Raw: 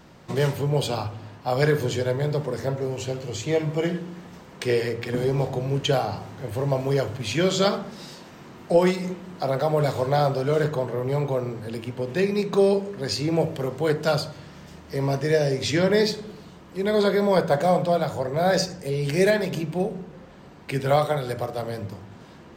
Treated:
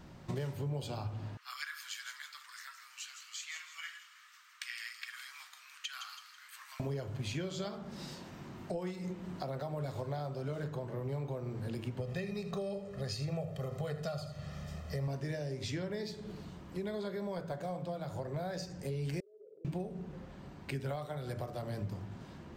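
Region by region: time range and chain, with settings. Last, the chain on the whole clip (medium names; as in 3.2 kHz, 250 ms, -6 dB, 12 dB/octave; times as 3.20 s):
1.37–6.80 s: Chebyshev high-pass 1.2 kHz, order 5 + feedback echo behind a high-pass 163 ms, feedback 36%, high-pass 3.7 kHz, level -7 dB
12.00–15.08 s: comb 1.6 ms, depth 81% + delay 80 ms -14 dB
19.20–19.65 s: Butterworth band-pass 460 Hz, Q 7.2 + compression 10:1, threshold -44 dBFS
whole clip: band-stop 470 Hz, Q 12; compression 6:1, threshold -32 dBFS; bass shelf 180 Hz +8.5 dB; trim -6.5 dB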